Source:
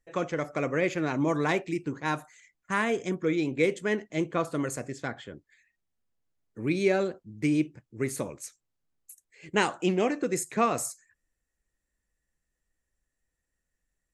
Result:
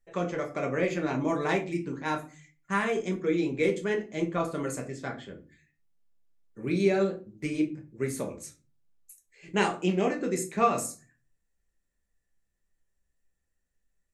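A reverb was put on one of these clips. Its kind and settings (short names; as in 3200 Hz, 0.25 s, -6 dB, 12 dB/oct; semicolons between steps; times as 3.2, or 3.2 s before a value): shoebox room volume 180 m³, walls furnished, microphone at 1.2 m; gain -3.5 dB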